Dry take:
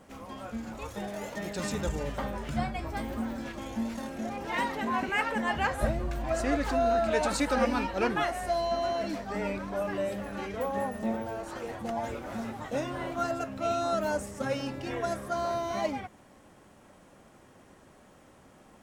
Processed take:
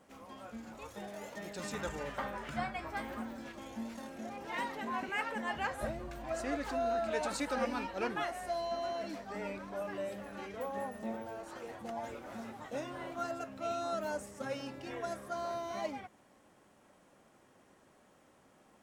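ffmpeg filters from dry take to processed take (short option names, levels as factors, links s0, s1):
-filter_complex "[0:a]asettb=1/sr,asplit=3[s0][s1][s2];[s0]atrim=end=1.734[s3];[s1]atrim=start=1.73:end=3.23,asetpts=PTS-STARTPTS,afade=t=in:d=0.004:c=qsin,afade=t=out:st=1.496:d=0.004:c=qsin,equalizer=f=1500:t=o:w=1.9:g=7.5[s4];[s2]atrim=start=3.226[s5];[s3][s4]acrossfade=d=0.004:c1=hsin:c2=qsin[s6];[s6][s5]acrossfade=d=0.004:c1=qsin:c2=hsin,lowshelf=f=120:g=-10,volume=0.447"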